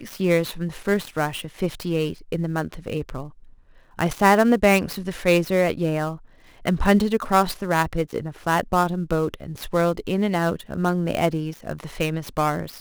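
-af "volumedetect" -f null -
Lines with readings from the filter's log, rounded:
mean_volume: -22.9 dB
max_volume: -3.0 dB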